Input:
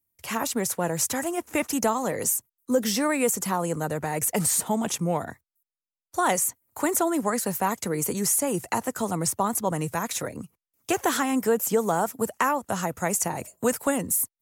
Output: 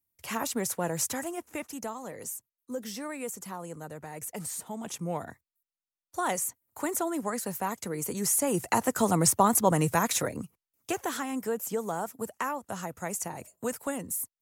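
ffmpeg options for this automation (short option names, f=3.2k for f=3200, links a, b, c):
-af "volume=12dB,afade=t=out:st=0.99:d=0.7:silence=0.354813,afade=t=in:st=4.73:d=0.44:silence=0.473151,afade=t=in:st=8.06:d=1.04:silence=0.334965,afade=t=out:st=9.98:d=1.05:silence=0.266073"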